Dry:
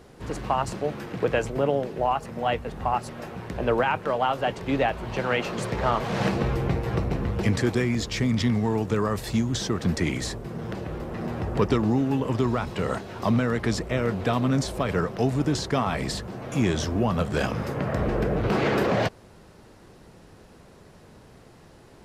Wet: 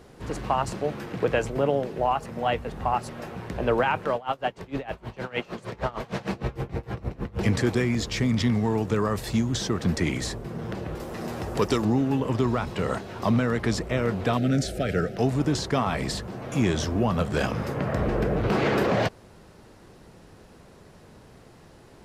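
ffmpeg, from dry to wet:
ffmpeg -i in.wav -filter_complex "[0:a]asplit=3[link_01][link_02][link_03];[link_01]afade=type=out:start_time=4.14:duration=0.02[link_04];[link_02]aeval=exprs='val(0)*pow(10,-23*(0.5-0.5*cos(2*PI*6.5*n/s))/20)':channel_layout=same,afade=type=in:start_time=4.14:duration=0.02,afade=type=out:start_time=7.39:duration=0.02[link_05];[link_03]afade=type=in:start_time=7.39:duration=0.02[link_06];[link_04][link_05][link_06]amix=inputs=3:normalize=0,asettb=1/sr,asplit=3[link_07][link_08][link_09];[link_07]atrim=end=10.954[link_10];[link_08]atrim=start=10.95:end=11.85,asetpts=PTS-STARTPTS,afade=type=in:duration=0.004:curve=qsin,afade=type=out:start_time=0.896:duration=0.004:curve=qsin,bass=frequency=250:gain=-5,treble=frequency=4000:gain=11[link_11];[link_09]atrim=start=11.846[link_12];[link_10][link_11]acrossfade=duration=0.004:curve1=hsin:curve2=qsin[link_13];[link_13][link_12]acrossfade=duration=0.004:curve1=qsin:curve2=hsin,asettb=1/sr,asplit=3[link_14][link_15][link_16];[link_14]atrim=end=14.374[link_17];[link_15]atrim=start=14.37:end=15.17,asetpts=PTS-STARTPTS,afade=type=in:duration=0.004:curve=qsin,afade=type=out:start_time=0.796:duration=0.004:curve=qsin,asuperstop=centerf=1000:order=8:qfactor=1.9[link_18];[link_16]atrim=start=15.166[link_19];[link_17][link_18]acrossfade=duration=0.004:curve1=hsin:curve2=qsin[link_20];[link_20][link_19]acrossfade=duration=0.004:curve1=qsin:curve2=hsin" out.wav

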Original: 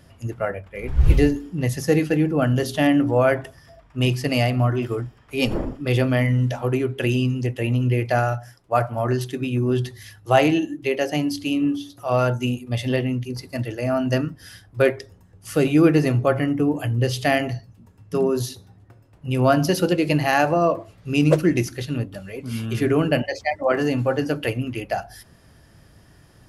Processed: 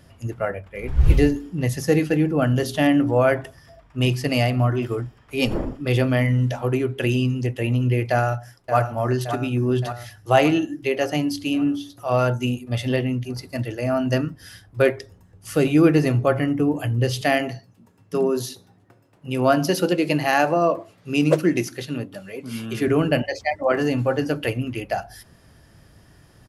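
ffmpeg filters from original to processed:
ffmpeg -i in.wav -filter_complex "[0:a]asplit=2[link_01][link_02];[link_02]afade=type=in:start_time=8.11:duration=0.01,afade=type=out:start_time=8.78:duration=0.01,aecho=0:1:570|1140|1710|2280|2850|3420|3990|4560|5130:0.354813|0.230629|0.149909|0.0974406|0.0633364|0.0411687|0.0267596|0.0173938|0.0113059[link_03];[link_01][link_03]amix=inputs=2:normalize=0,asettb=1/sr,asplit=3[link_04][link_05][link_06];[link_04]atrim=end=17.214[link_07];[link_05]atrim=start=17.21:end=22.88,asetpts=PTS-STARTPTS,afade=type=in:duration=0.004:curve=qsin,afade=type=out:start_time=5.666:duration=0.004:curve=qsin,highpass=170[link_08];[link_06]atrim=start=22.876[link_09];[link_07][link_08]acrossfade=duration=0.004:curve1=hsin:curve2=qsin[link_10];[link_10][link_09]acrossfade=duration=0.004:curve1=qsin:curve2=hsin" out.wav

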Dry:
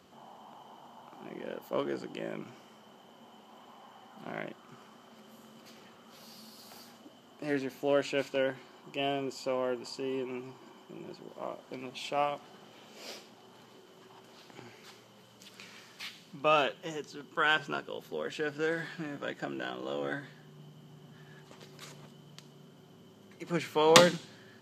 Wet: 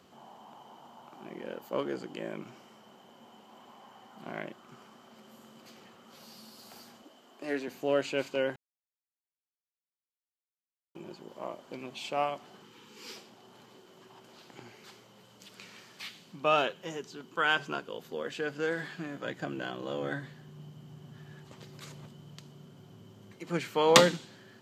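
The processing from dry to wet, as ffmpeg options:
ffmpeg -i in.wav -filter_complex "[0:a]asettb=1/sr,asplit=3[link_01][link_02][link_03];[link_01]atrim=end=7.024[link_04];[link_02]atrim=start=7.02:end=7.68,asetpts=PTS-STARTPTS,afade=type=in:duration=0.004:curve=qsin,afade=type=out:start_time=0.656:duration=0.004:curve=qsin,highpass=270[link_05];[link_03]atrim=start=7.676[link_06];[link_04][link_05]acrossfade=duration=0.004:curve1=hsin:curve2=qsin[link_07];[link_07][link_06]acrossfade=duration=0.004:curve1=qsin:curve2=hsin,asettb=1/sr,asplit=3[link_08][link_09][link_10];[link_08]atrim=end=12.624[link_11];[link_09]atrim=start=12.62:end=13.16,asetpts=PTS-STARTPTS,afade=type=in:duration=0.004:curve=qsin,afade=type=out:start_time=0.536:duration=0.004:curve=qsin,asuperstop=centerf=650:order=20:qfactor=2.2[link_12];[link_10]atrim=start=13.156[link_13];[link_11][link_12]acrossfade=duration=0.004:curve1=hsin:curve2=qsin[link_14];[link_14][link_13]acrossfade=duration=0.004:curve1=qsin:curve2=hsin,asettb=1/sr,asplit=3[link_15][link_16][link_17];[link_15]atrim=end=19.254[link_18];[link_16]atrim=start=19.25:end=23.33,asetpts=PTS-STARTPTS,afade=type=in:duration=0.004:curve=qsin,afade=type=out:start_time=4.076:duration=0.004:curve=qsin,equalizer=frequency=100:width_type=o:width=0.99:gain=11.5[link_19];[link_17]atrim=start=23.326[link_20];[link_18][link_19]acrossfade=duration=0.004:curve1=hsin:curve2=qsin[link_21];[link_21][link_20]acrossfade=duration=0.004:curve1=qsin:curve2=hsin,asplit=3[link_22][link_23][link_24];[link_22]atrim=end=8.56,asetpts=PTS-STARTPTS,afade=type=out:start_time=8.556:duration=0.004:curve=hsin[link_25];[link_23]atrim=start=8.56:end=10.95,asetpts=PTS-STARTPTS,volume=0[link_26];[link_24]atrim=start=10.95,asetpts=PTS-STARTPTS,afade=type=in:duration=0.004:curve=hsin[link_27];[link_25][link_26][link_27]concat=n=3:v=0:a=1" out.wav

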